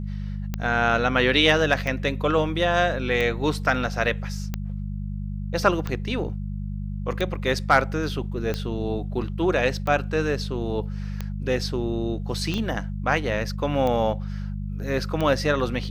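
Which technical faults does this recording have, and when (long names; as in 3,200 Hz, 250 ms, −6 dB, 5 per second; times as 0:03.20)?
mains hum 50 Hz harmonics 4 −30 dBFS
scratch tick 45 rpm −14 dBFS
0:12.58: drop-out 2.3 ms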